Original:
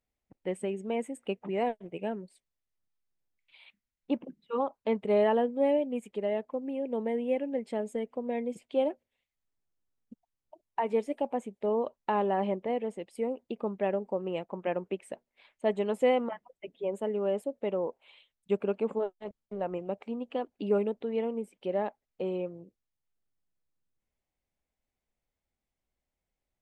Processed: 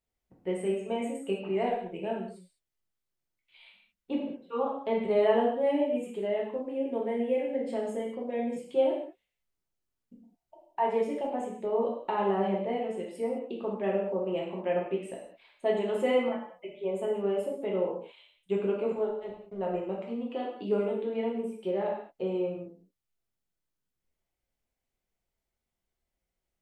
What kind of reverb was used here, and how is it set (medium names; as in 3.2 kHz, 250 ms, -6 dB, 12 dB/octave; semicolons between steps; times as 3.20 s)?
gated-style reverb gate 240 ms falling, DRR -3.5 dB; trim -4 dB